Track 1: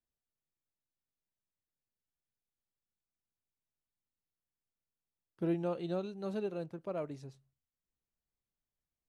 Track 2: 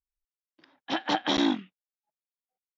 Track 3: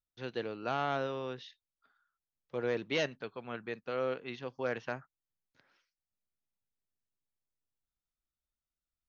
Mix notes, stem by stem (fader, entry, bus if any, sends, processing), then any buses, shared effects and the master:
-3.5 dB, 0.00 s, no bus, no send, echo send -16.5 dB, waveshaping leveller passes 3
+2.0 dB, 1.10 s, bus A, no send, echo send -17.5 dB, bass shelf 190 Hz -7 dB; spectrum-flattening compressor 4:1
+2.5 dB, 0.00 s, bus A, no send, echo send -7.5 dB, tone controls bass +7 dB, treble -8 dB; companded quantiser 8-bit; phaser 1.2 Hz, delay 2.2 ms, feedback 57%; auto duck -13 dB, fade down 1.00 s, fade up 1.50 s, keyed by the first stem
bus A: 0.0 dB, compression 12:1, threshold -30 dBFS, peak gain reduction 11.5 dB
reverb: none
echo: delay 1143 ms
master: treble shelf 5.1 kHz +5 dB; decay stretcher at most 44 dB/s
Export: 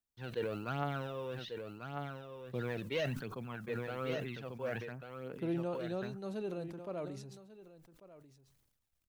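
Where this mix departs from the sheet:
stem 1: missing waveshaping leveller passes 3; stem 2: muted; stem 3 +2.5 dB -> -6.0 dB

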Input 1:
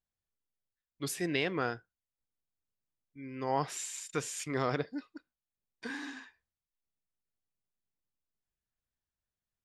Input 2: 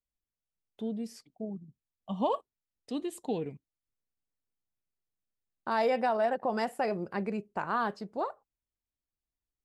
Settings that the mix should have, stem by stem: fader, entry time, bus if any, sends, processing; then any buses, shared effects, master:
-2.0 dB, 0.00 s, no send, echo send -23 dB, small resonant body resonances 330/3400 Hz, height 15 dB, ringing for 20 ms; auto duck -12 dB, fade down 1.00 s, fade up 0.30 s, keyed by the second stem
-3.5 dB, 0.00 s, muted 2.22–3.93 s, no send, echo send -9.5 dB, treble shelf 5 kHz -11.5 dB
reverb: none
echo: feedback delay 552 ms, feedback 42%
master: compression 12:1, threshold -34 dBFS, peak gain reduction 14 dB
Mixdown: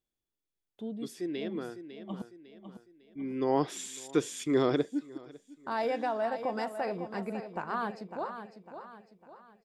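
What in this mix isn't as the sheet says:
stem 2: missing treble shelf 5 kHz -11.5 dB; master: missing compression 12:1, threshold -34 dBFS, peak gain reduction 14 dB

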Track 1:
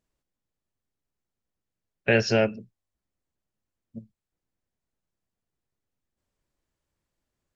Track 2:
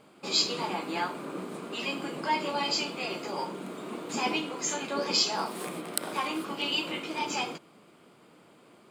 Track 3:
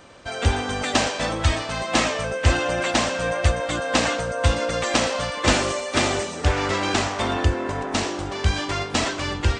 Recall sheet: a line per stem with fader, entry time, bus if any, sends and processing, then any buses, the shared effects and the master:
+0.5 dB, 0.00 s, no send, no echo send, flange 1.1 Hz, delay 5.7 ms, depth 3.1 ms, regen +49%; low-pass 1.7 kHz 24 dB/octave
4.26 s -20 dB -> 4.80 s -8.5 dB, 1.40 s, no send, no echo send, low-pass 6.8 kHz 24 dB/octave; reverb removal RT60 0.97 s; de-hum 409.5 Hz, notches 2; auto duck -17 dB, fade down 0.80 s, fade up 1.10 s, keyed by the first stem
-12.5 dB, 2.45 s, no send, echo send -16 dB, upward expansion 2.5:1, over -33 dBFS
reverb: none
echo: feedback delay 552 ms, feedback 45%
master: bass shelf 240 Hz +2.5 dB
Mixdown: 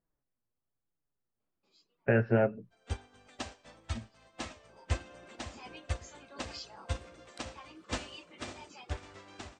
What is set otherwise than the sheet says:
stem 2 -20.0 dB -> -30.5 dB; master: missing bass shelf 240 Hz +2.5 dB

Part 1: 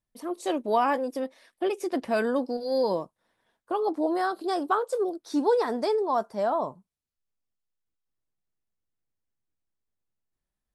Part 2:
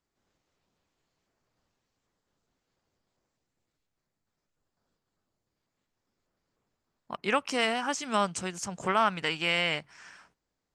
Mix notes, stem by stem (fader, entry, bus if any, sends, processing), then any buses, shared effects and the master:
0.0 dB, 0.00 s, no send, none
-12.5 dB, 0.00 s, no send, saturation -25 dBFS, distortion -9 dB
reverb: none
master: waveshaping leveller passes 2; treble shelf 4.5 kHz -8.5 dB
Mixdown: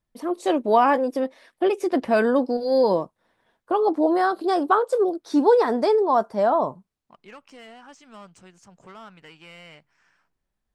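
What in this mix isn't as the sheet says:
stem 1 0.0 dB -> +6.5 dB; master: missing waveshaping leveller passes 2

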